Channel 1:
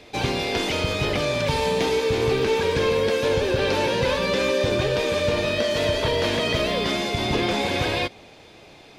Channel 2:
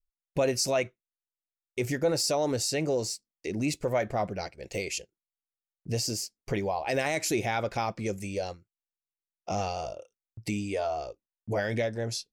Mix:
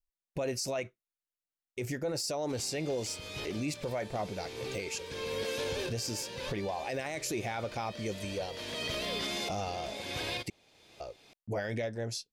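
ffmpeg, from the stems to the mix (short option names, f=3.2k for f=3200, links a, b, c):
-filter_complex "[0:a]highshelf=f=3.2k:g=11,adelay=2350,volume=-10.5dB[a];[1:a]volume=-4dB,asplit=3[b][c][d];[b]atrim=end=10.5,asetpts=PTS-STARTPTS,afade=t=out:st=10.496:d=0.004:c=hsin[e];[c]atrim=start=10.5:end=11,asetpts=PTS-STARTPTS,volume=0[f];[d]atrim=start=11,asetpts=PTS-STARTPTS,afade=t=in:d=0.004:c=hsin[g];[e][f][g]concat=n=3:v=0:a=1,asplit=2[h][i];[i]apad=whole_len=499755[j];[a][j]sidechaincompress=threshold=-46dB:ratio=6:attack=5.6:release=550[k];[k][h]amix=inputs=2:normalize=0,alimiter=level_in=2dB:limit=-24dB:level=0:latency=1:release=28,volume=-2dB"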